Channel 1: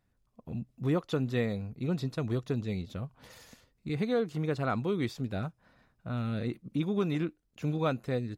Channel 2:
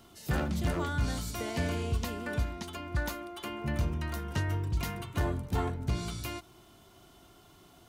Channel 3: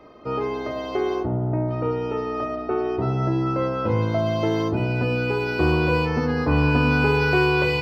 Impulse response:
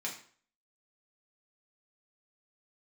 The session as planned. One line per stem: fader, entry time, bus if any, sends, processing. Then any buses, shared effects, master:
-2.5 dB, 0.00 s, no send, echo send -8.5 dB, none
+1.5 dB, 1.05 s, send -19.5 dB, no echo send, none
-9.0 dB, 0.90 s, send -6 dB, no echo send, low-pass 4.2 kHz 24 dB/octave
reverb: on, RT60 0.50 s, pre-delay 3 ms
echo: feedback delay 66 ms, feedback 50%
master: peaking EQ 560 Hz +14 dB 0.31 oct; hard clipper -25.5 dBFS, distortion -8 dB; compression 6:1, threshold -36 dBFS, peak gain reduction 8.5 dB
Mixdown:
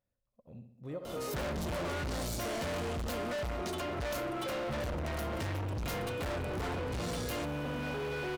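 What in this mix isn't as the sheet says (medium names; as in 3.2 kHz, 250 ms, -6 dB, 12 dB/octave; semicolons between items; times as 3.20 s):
stem 1 -2.5 dB -> -14.0 dB; stem 2 +1.5 dB -> +13.0 dB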